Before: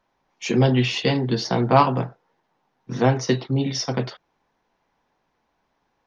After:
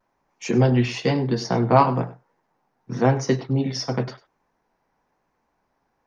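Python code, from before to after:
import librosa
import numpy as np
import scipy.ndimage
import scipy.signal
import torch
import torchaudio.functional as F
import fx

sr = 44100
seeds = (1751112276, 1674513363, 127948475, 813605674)

p1 = fx.peak_eq(x, sr, hz=3400.0, db=-9.0, octaves=0.81)
p2 = p1 + fx.echo_single(p1, sr, ms=99, db=-17.5, dry=0)
y = fx.vibrato(p2, sr, rate_hz=0.99, depth_cents=42.0)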